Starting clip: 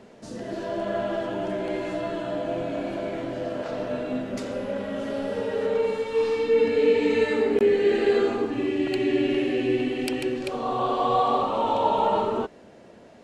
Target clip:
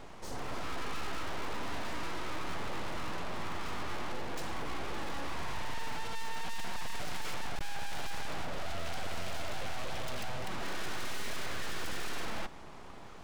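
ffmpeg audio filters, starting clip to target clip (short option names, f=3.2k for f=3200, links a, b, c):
-af "aeval=exprs='abs(val(0))':c=same,aeval=exprs='(tanh(28.2*val(0)+0.55)-tanh(0.55))/28.2':c=same,volume=6dB"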